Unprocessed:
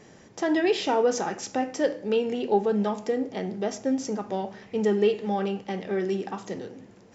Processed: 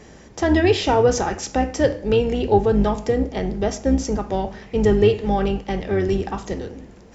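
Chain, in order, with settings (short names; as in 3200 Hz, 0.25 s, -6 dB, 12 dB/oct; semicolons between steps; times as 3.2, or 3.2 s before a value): octaver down 2 oct, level -2 dB; gain +6 dB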